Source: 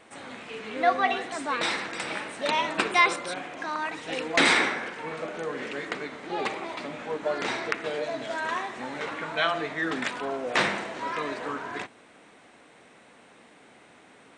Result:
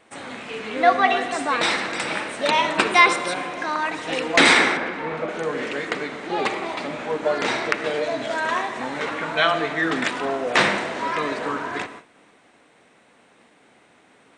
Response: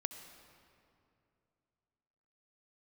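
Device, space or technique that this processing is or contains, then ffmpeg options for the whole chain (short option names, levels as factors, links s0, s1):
keyed gated reverb: -filter_complex "[0:a]asplit=3[s0][s1][s2];[1:a]atrim=start_sample=2205[s3];[s1][s3]afir=irnorm=-1:irlink=0[s4];[s2]apad=whole_len=634090[s5];[s4][s5]sidechaingate=range=0.0224:threshold=0.00316:ratio=16:detection=peak,volume=2[s6];[s0][s6]amix=inputs=2:normalize=0,asettb=1/sr,asplit=3[s7][s8][s9];[s7]atrim=end=4.774[s10];[s8]atrim=start=4.77:end=5.29,asetpts=PTS-STARTPTS,afade=t=in:d=0.004:c=qsin,afade=t=out:st=0.516:d=0.004:c=qsin,aemphasis=mode=reproduction:type=75fm[s11];[s9]atrim=start=5.286[s12];[s10][s11]acrossfade=d=0.004:c1=hsin:c2=qsin[s13];[s13][s12]acrossfade=d=0.004:c1=qsin:c2=hsin,volume=0.75"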